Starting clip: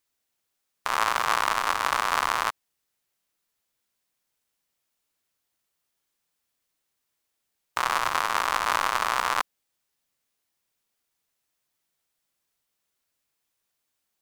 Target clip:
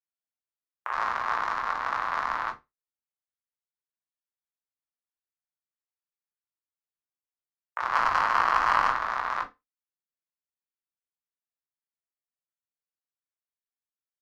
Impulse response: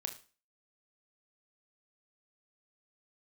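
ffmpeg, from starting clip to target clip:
-filter_complex "[0:a]afwtdn=0.0112,highshelf=f=2.2k:t=q:w=1.5:g=-7,asettb=1/sr,asplit=3[a][b][c];[a]atrim=end=7.934[d];[b]atrim=start=7.93:end=8.92,asetpts=PTS-STARTPTS,afade=t=in:d=0.004:c=qsin,afade=t=out:st=0.986:d=0.004:c=qsin,acontrast=83[e];[c]atrim=start=8.916[f];[d][e]acrossfade=d=0.004:c1=hsin:c2=qsin[g];[g][f]acrossfade=d=0.004:c1=qsin:c2=hsin,acrossover=split=410[h][i];[h]adelay=50[j];[j][i]amix=inputs=2:normalize=0[k];[1:a]atrim=start_sample=2205,asetrate=79380,aresample=44100[l];[k][l]afir=irnorm=-1:irlink=0,volume=1.5dB"

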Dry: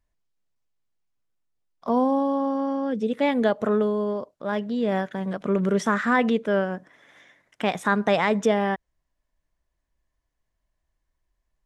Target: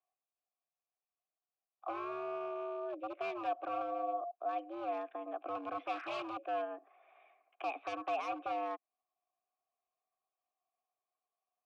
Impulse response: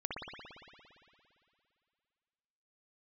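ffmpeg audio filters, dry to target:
-filter_complex "[0:a]acrossover=split=380|1100[a][b][c];[b]acompressor=threshold=-39dB:ratio=16[d];[a][d][c]amix=inputs=3:normalize=0,highpass=f=180:t=q:w=0.5412,highpass=f=180:t=q:w=1.307,lowpass=f=3k:t=q:w=0.5176,lowpass=f=3k:t=q:w=0.7071,lowpass=f=3k:t=q:w=1.932,afreqshift=100,aeval=exprs='0.0668*(abs(mod(val(0)/0.0668+3,4)-2)-1)':c=same,asettb=1/sr,asplit=3[e][f][g];[e]atrim=end=3.734[h];[f]atrim=start=3.73:end=4.31,asetpts=PTS-STARTPTS,afade=t=in:d=0.004:c=qsin,afade=t=out:st=0.576:d=0.004:c=qsin,aeval=exprs='val(0)+0.01*sin(2*PI*700*n/s)':c=same[i];[g]atrim=start=4.306[j];[h][i]acrossfade=d=0.004:c1=hsin:c2=qsin[k];[k][j]acrossfade=d=0.004:c1=qsin:c2=hsin,asplit=3[l][m][n];[l]bandpass=f=730:t=q:w=8,volume=0dB[o];[m]bandpass=f=1.09k:t=q:w=8,volume=-6dB[p];[n]bandpass=f=2.44k:t=q:w=8,volume=-9dB[q];[o][p][q]amix=inputs=3:normalize=0,volume=2.5dB"

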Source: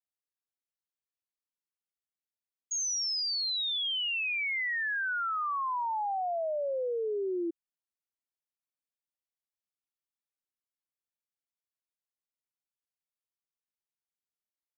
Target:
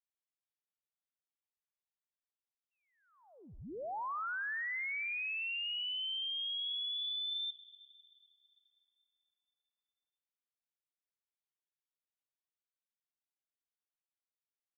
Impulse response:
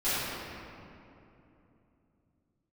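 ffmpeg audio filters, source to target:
-filter_complex "[0:a]aecho=1:1:112|224|336:0.1|0.045|0.0202,asplit=2[a][b];[1:a]atrim=start_sample=2205,adelay=65[c];[b][c]afir=irnorm=-1:irlink=0,volume=-32dB[d];[a][d]amix=inputs=2:normalize=0,lowpass=f=3.3k:t=q:w=0.5098,lowpass=f=3.3k:t=q:w=0.6013,lowpass=f=3.3k:t=q:w=0.9,lowpass=f=3.3k:t=q:w=2.563,afreqshift=-3900,volume=-6.5dB"

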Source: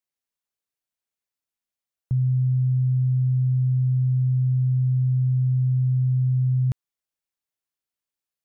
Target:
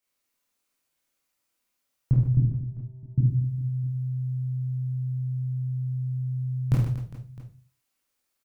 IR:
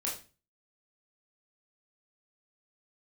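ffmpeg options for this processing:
-filter_complex "[0:a]asettb=1/sr,asplit=3[a][b][c];[a]atrim=end=2.374[d];[b]atrim=start=2.37:end=3.18,asetpts=PTS-STARTPTS,afade=t=in:d=0.004:c=qsin,afade=t=out:st=0.806:d=0.004:c=qsin,agate=range=-33dB:threshold=-7dB:ratio=3:detection=peak[e];[c]atrim=start=3.176[f];[d][e]acrossfade=d=0.004:c1=hsin:c2=qsin[g];[g][f]acrossfade=d=0.004:c1=qsin:c2=hsin,aecho=1:1:50|125|237.5|406.2|659.4:0.631|0.398|0.251|0.158|0.1[h];[1:a]atrim=start_sample=2205[i];[h][i]afir=irnorm=-1:irlink=0,volume=6.5dB"

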